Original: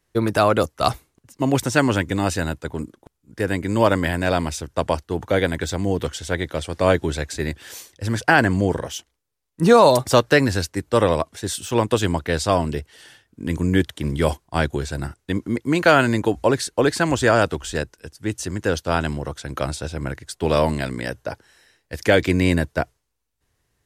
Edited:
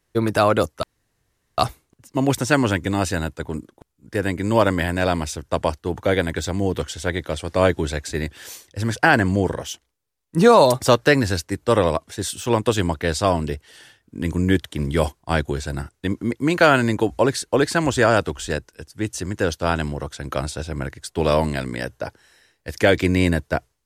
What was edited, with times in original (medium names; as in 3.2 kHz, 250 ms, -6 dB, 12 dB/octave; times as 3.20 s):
0.83 s: insert room tone 0.75 s